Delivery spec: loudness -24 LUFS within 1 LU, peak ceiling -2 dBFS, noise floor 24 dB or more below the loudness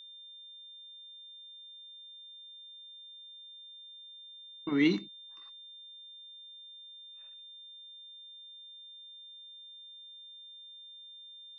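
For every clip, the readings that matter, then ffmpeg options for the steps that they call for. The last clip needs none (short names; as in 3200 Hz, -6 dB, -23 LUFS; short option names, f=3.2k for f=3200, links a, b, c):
steady tone 3600 Hz; tone level -48 dBFS; loudness -41.0 LUFS; peak -16.0 dBFS; loudness target -24.0 LUFS
-> -af "bandreject=f=3.6k:w=30"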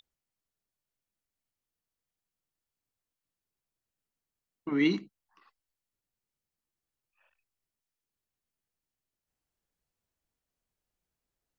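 steady tone none; loudness -29.5 LUFS; peak -16.0 dBFS; loudness target -24.0 LUFS
-> -af "volume=5.5dB"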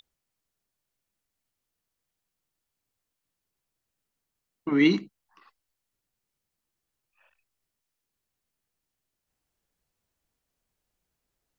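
loudness -24.0 LUFS; peak -10.5 dBFS; noise floor -85 dBFS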